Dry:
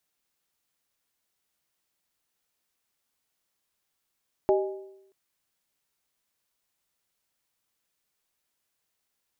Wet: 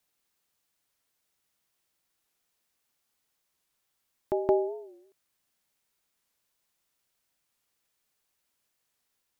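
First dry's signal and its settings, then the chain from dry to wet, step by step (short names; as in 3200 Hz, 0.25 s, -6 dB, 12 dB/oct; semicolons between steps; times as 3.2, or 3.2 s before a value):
skin hit, lowest mode 387 Hz, modes 3, decay 0.86 s, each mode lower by 4 dB, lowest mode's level -18 dB
reverse echo 0.171 s -5 dB; record warp 45 rpm, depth 160 cents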